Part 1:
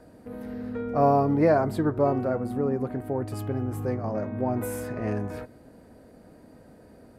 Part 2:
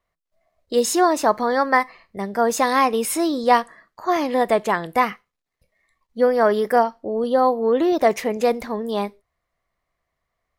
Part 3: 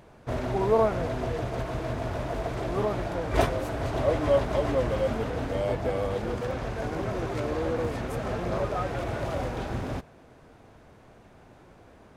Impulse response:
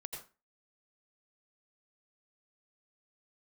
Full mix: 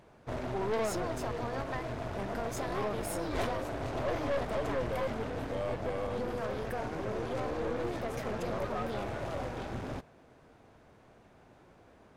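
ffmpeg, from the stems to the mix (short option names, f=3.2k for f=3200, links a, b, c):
-filter_complex "[0:a]adelay=1650,volume=-16dB[a];[1:a]volume=-7.5dB[b];[2:a]highshelf=f=10k:g=-3.5,volume=-3dB[c];[a][b]amix=inputs=2:normalize=0,acompressor=threshold=-33dB:ratio=6,volume=0dB[d];[c][d]amix=inputs=2:normalize=0,lowshelf=f=110:g=-4.5,aeval=exprs='(tanh(25.1*val(0)+0.5)-tanh(0.5))/25.1':c=same"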